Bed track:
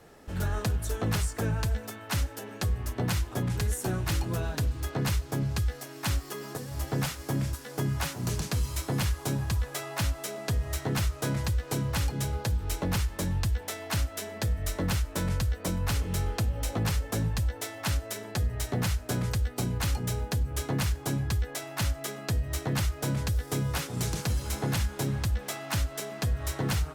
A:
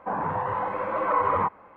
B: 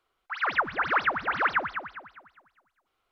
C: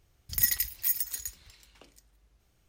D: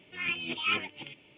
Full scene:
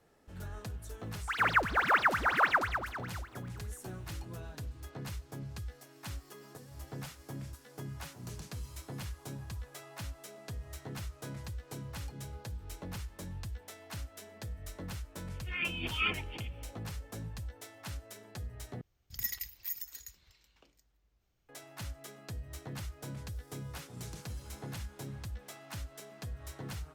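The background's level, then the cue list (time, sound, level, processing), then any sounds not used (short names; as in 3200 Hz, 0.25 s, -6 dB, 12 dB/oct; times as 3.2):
bed track -13.5 dB
0.98 add B -2 dB + G.711 law mismatch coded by mu
15.34 add D -3 dB
18.81 replace with C -9 dB + bell 9900 Hz -14.5 dB 0.4 oct
not used: A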